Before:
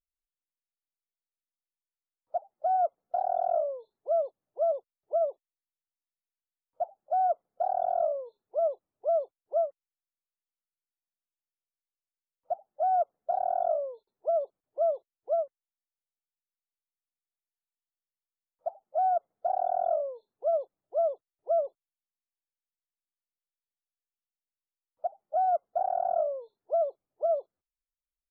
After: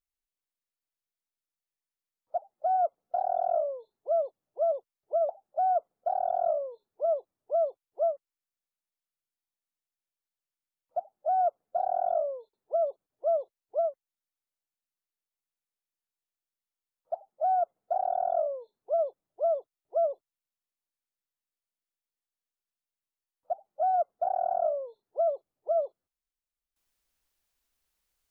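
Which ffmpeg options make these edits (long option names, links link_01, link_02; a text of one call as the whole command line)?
ffmpeg -i in.wav -filter_complex "[0:a]asplit=2[link_01][link_02];[link_01]atrim=end=5.292[link_03];[link_02]atrim=start=6.828[link_04];[link_03][link_04]acrossfade=duration=0.004:curve1=hsin:curve2=hsin" out.wav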